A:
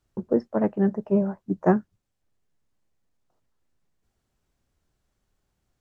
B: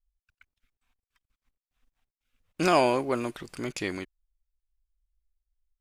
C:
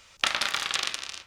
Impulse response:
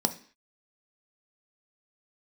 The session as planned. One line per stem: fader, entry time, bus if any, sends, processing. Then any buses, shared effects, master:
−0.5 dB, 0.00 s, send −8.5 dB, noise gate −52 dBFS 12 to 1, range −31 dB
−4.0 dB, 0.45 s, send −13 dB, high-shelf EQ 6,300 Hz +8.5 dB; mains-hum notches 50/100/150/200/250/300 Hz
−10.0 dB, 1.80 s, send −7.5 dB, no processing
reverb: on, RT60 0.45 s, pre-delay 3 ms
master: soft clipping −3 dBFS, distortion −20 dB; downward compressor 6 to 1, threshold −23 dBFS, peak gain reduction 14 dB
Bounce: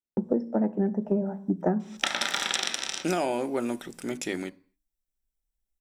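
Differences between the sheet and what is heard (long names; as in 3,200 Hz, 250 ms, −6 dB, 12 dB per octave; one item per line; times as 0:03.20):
stem C −10.0 dB → +2.0 dB
master: missing soft clipping −3 dBFS, distortion −20 dB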